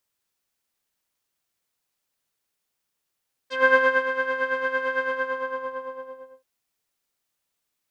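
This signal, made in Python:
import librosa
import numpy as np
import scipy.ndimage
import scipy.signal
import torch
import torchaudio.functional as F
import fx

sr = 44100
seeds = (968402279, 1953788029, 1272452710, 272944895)

y = fx.sub_patch_tremolo(sr, seeds[0], note=72, wave='saw', wave2='saw', interval_st=19, detune_cents=16, level2_db=-6.0, sub_db=-22, noise_db=-18, kind='lowpass', cutoff_hz=700.0, q=1.9, env_oct=3.0, env_decay_s=0.07, env_sustain_pct=40, attack_ms=179.0, decay_s=0.39, sustain_db=-9.5, release_s=1.38, note_s=1.55, lfo_hz=8.9, tremolo_db=8.5)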